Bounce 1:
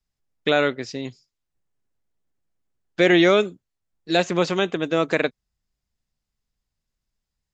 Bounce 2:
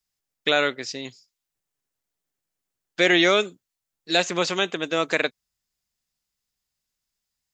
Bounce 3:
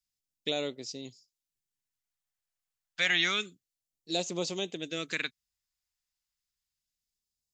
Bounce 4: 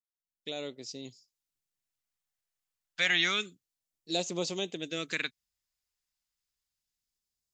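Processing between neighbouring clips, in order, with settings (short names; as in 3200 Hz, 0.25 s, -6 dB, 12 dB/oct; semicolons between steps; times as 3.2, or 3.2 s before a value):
tilt +2.5 dB/oct; gain -1 dB
phaser stages 2, 0.29 Hz, lowest notch 280–1600 Hz; gain -6.5 dB
opening faded in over 1.12 s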